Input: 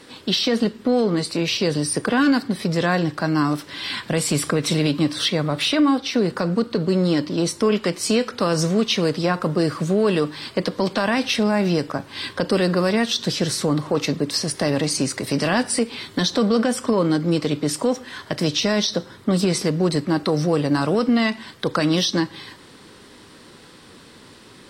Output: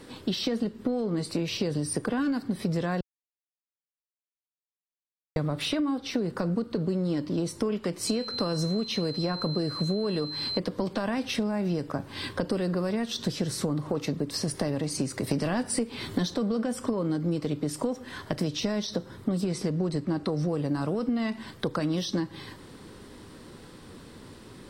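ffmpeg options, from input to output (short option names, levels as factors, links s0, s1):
-filter_complex "[0:a]asettb=1/sr,asplit=3[s0][s1][s2];[s0]atrim=end=8.074[s3];[s1]atrim=start=8.07:end=10.59,asetpts=PTS-STARTPTS,afade=t=in:d=0.004:c=qsin,afade=t=out:st=2.516:d=0.004:c=qsin,aeval=exprs='val(0)+0.0794*sin(2*PI*4100*n/s)':c=same[s4];[s2]atrim=start=10.586[s5];[s3][s4]acrossfade=d=0.004:c1=hsin:c2=qsin[s6];[s6][s5]acrossfade=d=0.004:c1=qsin:c2=hsin,asettb=1/sr,asplit=3[s7][s8][s9];[s7]atrim=end=15.314[s10];[s8]atrim=start=15.31:end=16.34,asetpts=PTS-STARTPTS,afade=t=in:d=0.004:c=qsin,afade=t=out:st=1.026:d=0.004:c=qsin,acontrast=34[s11];[s9]atrim=start=16.336[s12];[s10][s11]acrossfade=d=0.004:c1=hsin:c2=qsin[s13];[s13][s12]acrossfade=d=0.004:c1=qsin:c2=hsin,asettb=1/sr,asplit=3[s14][s15][s16];[s14]atrim=end=19.474[s17];[s15]atrim=start=19.47:end=20.5,asetpts=PTS-STARTPTS,afade=t=in:d=0.004:c=qsin,afade=t=out:st=1.026:d=0.004:c=qsin,lowpass=9600[s18];[s16]atrim=start=20.496[s19];[s17][s18]acrossfade=d=0.004:c1=hsin:c2=qsin[s20];[s20][s19]acrossfade=d=0.004:c1=qsin:c2=hsin,asplit=3[s21][s22][s23];[s21]atrim=end=3.01,asetpts=PTS-STARTPTS,afade=t=out:st=3.006:d=0.004:c=hsin[s24];[s22]atrim=start=3.01:end=5.36,asetpts=PTS-STARTPTS,volume=0[s25];[s23]atrim=start=5.36,asetpts=PTS-STARTPTS,afade=t=in:d=0.004:c=hsin[s26];[s24][s25][s26]concat=n=3:v=0:a=1,equalizer=f=3500:w=0.31:g=-7,acompressor=threshold=0.0501:ratio=6,lowshelf=f=83:g=9"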